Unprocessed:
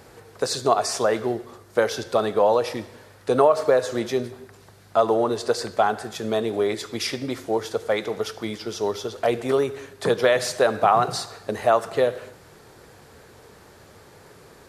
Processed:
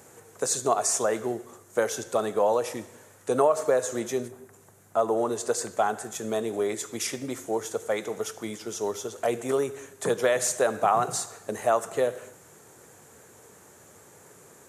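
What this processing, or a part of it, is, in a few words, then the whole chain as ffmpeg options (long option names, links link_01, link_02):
budget condenser microphone: -filter_complex "[0:a]asettb=1/sr,asplit=3[link_01][link_02][link_03];[link_01]atrim=end=4.284[link_04];[link_02]atrim=start=4.28:end=5.17,asetpts=PTS-STARTPTS,afade=type=in:duration=0.004:curve=qsin,afade=type=out:start_time=0.886:duration=0.004:curve=qsin,equalizer=frequency=4500:width=0.5:gain=-6[link_05];[link_03]atrim=start=5.166[link_06];[link_04][link_05]acrossfade=duration=0.004:curve1=hsin:curve2=qsin[link_07];[link_07][link_06]acrossfade=duration=0.004:curve1=qsin:curve2=hsin,highpass=110,highshelf=frequency=5700:width_type=q:width=3:gain=6.5,volume=-4.5dB"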